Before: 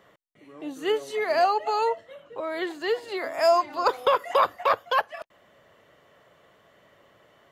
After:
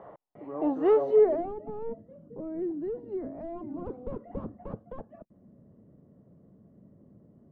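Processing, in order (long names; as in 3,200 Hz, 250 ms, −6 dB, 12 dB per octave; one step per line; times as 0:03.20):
soft clipping −27 dBFS, distortion −6 dB
low-pass filter sweep 820 Hz → 220 Hz, 0:01.02–0:01.55
level +7.5 dB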